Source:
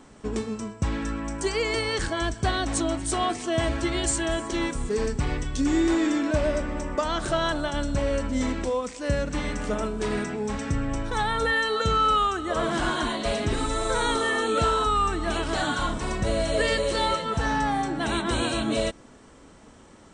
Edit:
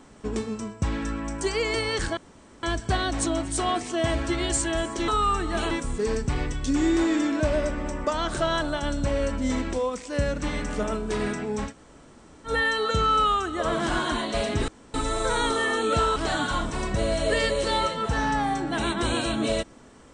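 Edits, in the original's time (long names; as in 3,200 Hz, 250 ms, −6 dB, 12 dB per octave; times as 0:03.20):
0:02.17: splice in room tone 0.46 s
0:10.60–0:11.40: fill with room tone, crossfade 0.10 s
0:13.59: splice in room tone 0.26 s
0:14.81–0:15.44: move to 0:04.62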